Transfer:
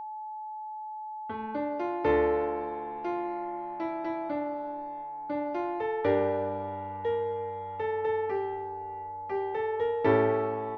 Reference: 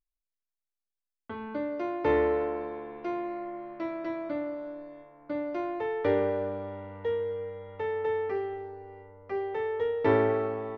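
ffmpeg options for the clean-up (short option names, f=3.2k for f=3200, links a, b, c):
-af "bandreject=f=860:w=30"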